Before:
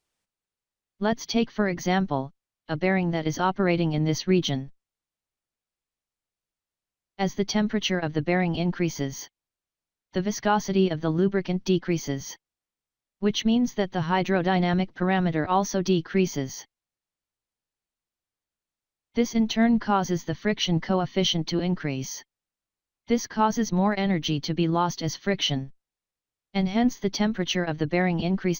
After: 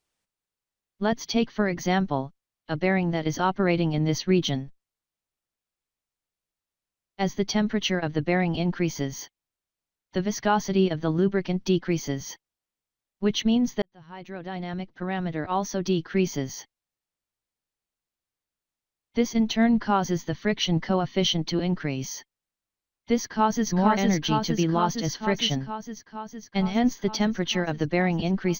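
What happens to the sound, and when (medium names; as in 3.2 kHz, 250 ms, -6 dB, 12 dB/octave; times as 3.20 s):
13.82–16.45 s: fade in linear
23.20–23.70 s: echo throw 460 ms, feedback 75%, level -2 dB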